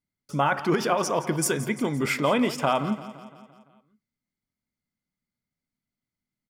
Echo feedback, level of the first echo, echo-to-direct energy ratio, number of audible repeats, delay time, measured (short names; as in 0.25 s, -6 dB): 57%, -15.0 dB, -13.5 dB, 5, 0.171 s